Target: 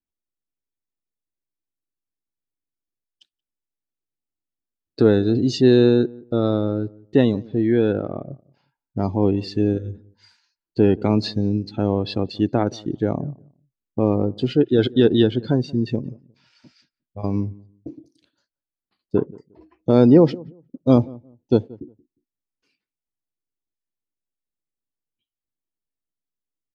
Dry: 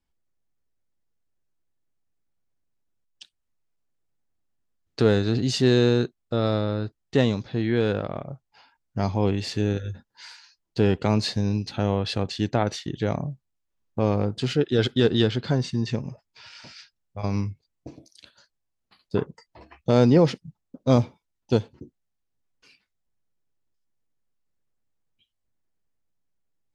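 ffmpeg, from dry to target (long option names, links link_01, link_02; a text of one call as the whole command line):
ffmpeg -i in.wav -filter_complex "[0:a]equalizer=frequency=310:width=1.4:gain=8.5,afftdn=noise_reduction=15:noise_floor=-33,asplit=2[link_01][link_02];[link_02]adelay=178,lowpass=frequency=850:poles=1,volume=-22dB,asplit=2[link_03][link_04];[link_04]adelay=178,lowpass=frequency=850:poles=1,volume=0.22[link_05];[link_01][link_03][link_05]amix=inputs=3:normalize=0" out.wav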